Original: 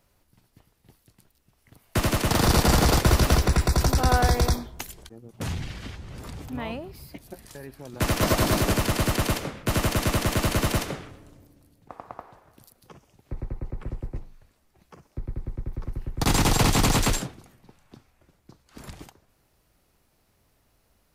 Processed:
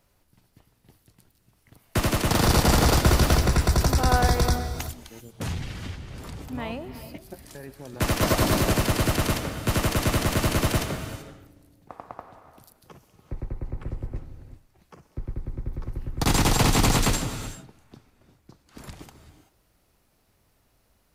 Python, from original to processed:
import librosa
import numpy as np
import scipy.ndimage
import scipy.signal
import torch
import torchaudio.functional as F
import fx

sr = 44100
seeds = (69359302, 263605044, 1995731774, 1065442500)

y = fx.rev_gated(x, sr, seeds[0], gate_ms=410, shape='rising', drr_db=11.0)